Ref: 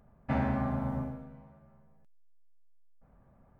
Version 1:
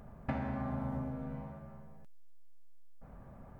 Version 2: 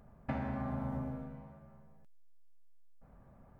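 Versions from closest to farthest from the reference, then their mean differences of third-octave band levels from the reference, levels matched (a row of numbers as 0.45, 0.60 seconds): 2, 1; 4.0, 7.0 decibels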